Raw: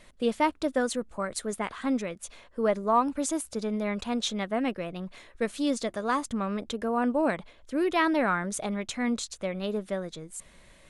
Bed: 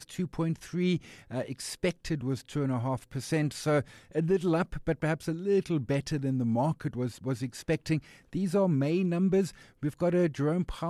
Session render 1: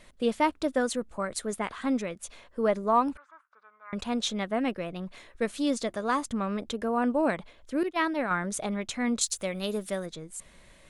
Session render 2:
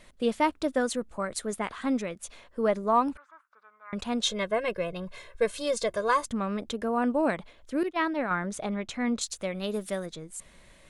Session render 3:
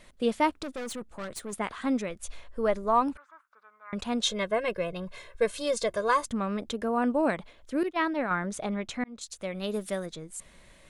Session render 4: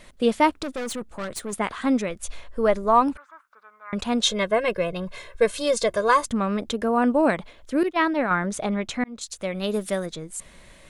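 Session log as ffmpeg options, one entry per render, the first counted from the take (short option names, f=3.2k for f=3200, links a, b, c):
-filter_complex "[0:a]asettb=1/sr,asplit=3[a][b][c];[a]atrim=end=3.174[d];[b]atrim=start=3.17:end=3.93,asetpts=PTS-STARTPTS,afade=t=in:d=0.004:c=qsin,afade=t=out:st=0.756:d=0.004:c=qsin,asuperpass=centerf=1300:order=4:qfactor=2.8[e];[c]atrim=start=3.926[f];[d][e]acrossfade=d=0.004:c1=hsin:c2=qsin[g];[g][f]acrossfade=d=0.004:c1=qsin:c2=hsin,asettb=1/sr,asplit=3[h][i][j];[h]atrim=end=7.834[k];[i]atrim=start=7.83:end=8.31,asetpts=PTS-STARTPTS,afade=t=in:d=0.004:c=qsin,afade=t=out:st=0.476:d=0.004:c=qsin,agate=range=-33dB:threshold=-21dB:ratio=3:release=100:detection=peak[l];[j]atrim=start=8.306[m];[k][l]acrossfade=d=0.004:c1=hsin:c2=qsin[n];[n][m]acrossfade=d=0.004:c1=qsin:c2=hsin,asettb=1/sr,asplit=3[o][p][q];[o]atrim=end=9.214[r];[p]atrim=start=9.21:end=10.06,asetpts=PTS-STARTPTS,afade=t=in:d=0.004:c=qsin,afade=t=out:st=0.846:d=0.004:c=qsin,aemphasis=mode=production:type=75fm[s];[q]atrim=start=10.056[t];[r][s]acrossfade=d=0.004:c1=hsin:c2=qsin[u];[u][t]acrossfade=d=0.004:c1=qsin:c2=hsin"
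-filter_complex "[0:a]asettb=1/sr,asplit=3[a][b][c];[a]atrim=end=4.234[d];[b]atrim=start=4.23:end=6.25,asetpts=PTS-STARTPTS,afade=t=in:d=0.004:c=qsin,afade=t=out:st=2.016:d=0.004:c=qsin,aecho=1:1:1.9:0.92,atrim=end_sample=89082[e];[c]atrim=start=6.246[f];[d][e]acrossfade=d=0.004:c1=hsin:c2=qsin[g];[g][f]acrossfade=d=0.004:c1=qsin:c2=hsin,asettb=1/sr,asplit=3[h][i][j];[h]atrim=end=7.924[k];[i]atrim=start=7.92:end=9.74,asetpts=PTS-STARTPTS,afade=t=in:d=0.004:c=qsin,afade=t=out:st=1.816:d=0.004:c=qsin,lowpass=f=3.9k:p=1[l];[j]atrim=start=9.736[m];[k][l]acrossfade=d=0.004:c1=hsin:c2=qsin[n];[n][m]acrossfade=d=0.004:c1=qsin:c2=hsin"
-filter_complex "[0:a]asettb=1/sr,asplit=3[a][b][c];[a]atrim=end=0.634[d];[b]atrim=start=0.63:end=1.53,asetpts=PTS-STARTPTS,afade=t=in:d=0.004:c=qsin,afade=t=out:st=0.896:d=0.004:c=qsin,aeval=exprs='(tanh(44.7*val(0)+0.45)-tanh(0.45))/44.7':c=same[e];[c]atrim=start=1.526[f];[d][e]acrossfade=d=0.004:c1=hsin:c2=qsin[g];[g][f]acrossfade=d=0.004:c1=qsin:c2=hsin,asplit=3[h][i][j];[h]afade=t=out:st=2.08:d=0.02[k];[i]asubboost=boost=7.5:cutoff=75,afade=t=in:st=2.08:d=0.02,afade=t=out:st=3.01:d=0.02[l];[j]afade=t=in:st=3.01:d=0.02[m];[k][l][m]amix=inputs=3:normalize=0,asplit=2[n][o];[n]atrim=end=9.04,asetpts=PTS-STARTPTS,afade=t=out:st=9.036:d=0.004:c=hsin[p];[o]atrim=start=9.04,asetpts=PTS-STARTPTS,afade=t=in:d=0.79:c=qsin[q];[p][q]concat=n=2:v=0:a=1"
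-af "volume=6dB"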